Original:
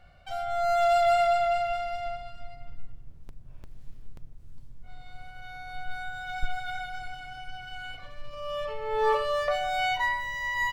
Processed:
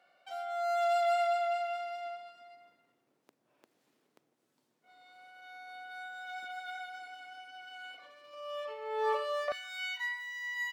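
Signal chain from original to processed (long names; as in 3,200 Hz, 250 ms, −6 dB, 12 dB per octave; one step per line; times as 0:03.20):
high-pass filter 290 Hz 24 dB per octave, from 0:09.52 1,400 Hz
level −6.5 dB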